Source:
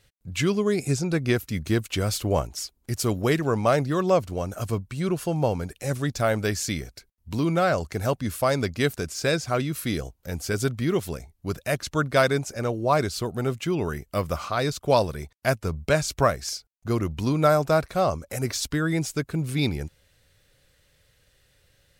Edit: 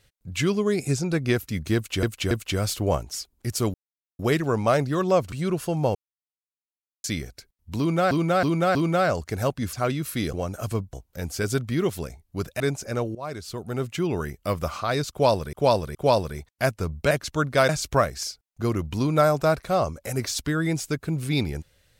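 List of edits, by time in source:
1.75–2.03 loop, 3 plays
3.18 insert silence 0.45 s
4.31–4.91 move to 10.03
5.54–6.63 mute
7.38–7.7 loop, 4 plays
8.36–9.43 cut
11.7–12.28 move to 15.95
12.83–13.65 fade in, from -18.5 dB
14.79–15.21 loop, 3 plays

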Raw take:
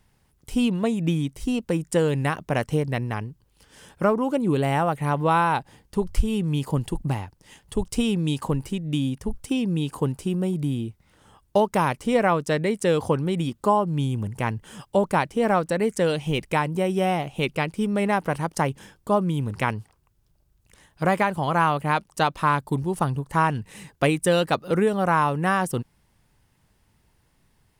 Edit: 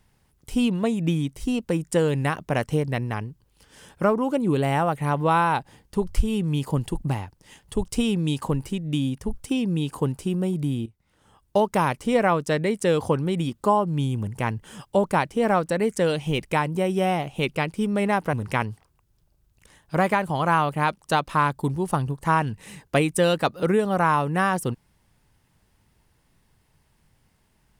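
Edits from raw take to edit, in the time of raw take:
10.86–11.67 fade in, from -15 dB
18.33–19.41 cut

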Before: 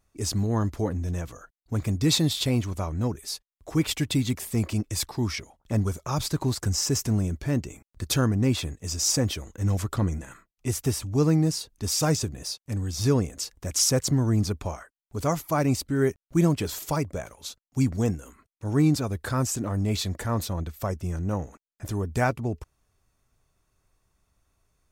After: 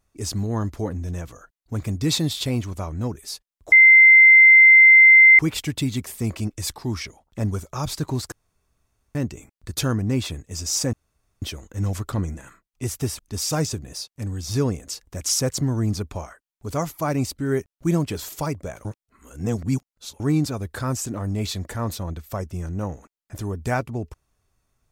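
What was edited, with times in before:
3.72 add tone 2080 Hz -7 dBFS 1.67 s
6.65–7.48 room tone
9.26 insert room tone 0.49 s
11.03–11.69 cut
17.35–18.7 reverse

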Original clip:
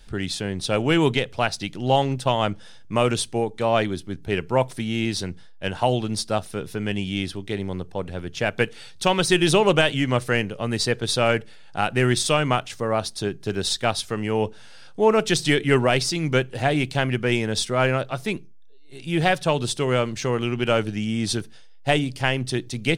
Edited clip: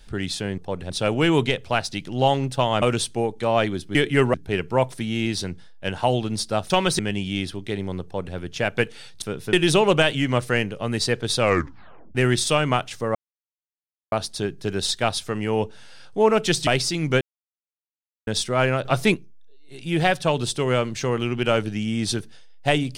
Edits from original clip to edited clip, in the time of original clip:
2.5–3 cut
6.49–6.8 swap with 9.03–9.32
7.85–8.17 copy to 0.58
11.19 tape stop 0.75 s
12.94 insert silence 0.97 s
15.49–15.88 move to 4.13
16.42–17.48 mute
18.06–18.35 gain +7.5 dB

